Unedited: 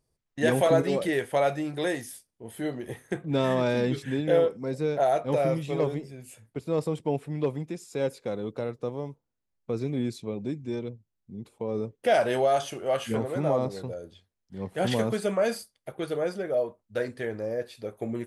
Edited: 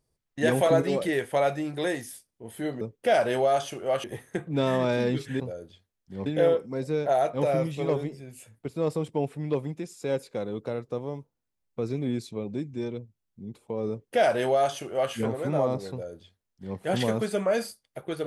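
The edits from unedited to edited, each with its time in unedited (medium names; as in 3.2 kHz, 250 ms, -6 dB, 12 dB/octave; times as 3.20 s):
11.81–13.04 s: copy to 2.81 s
13.82–14.68 s: copy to 4.17 s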